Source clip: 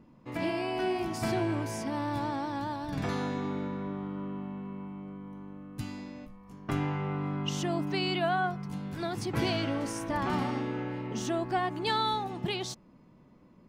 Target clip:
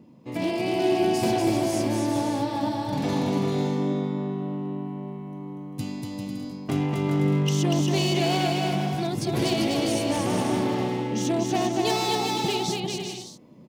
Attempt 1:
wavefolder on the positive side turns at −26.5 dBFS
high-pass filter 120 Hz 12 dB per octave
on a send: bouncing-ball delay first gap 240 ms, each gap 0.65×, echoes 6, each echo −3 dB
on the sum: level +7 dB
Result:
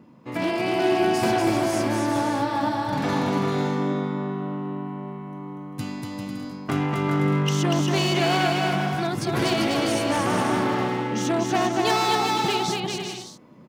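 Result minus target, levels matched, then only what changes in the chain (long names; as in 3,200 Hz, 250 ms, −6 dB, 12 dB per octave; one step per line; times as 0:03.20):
1,000 Hz band +3.0 dB
add after high-pass filter: parametric band 1,400 Hz −12 dB 1.1 octaves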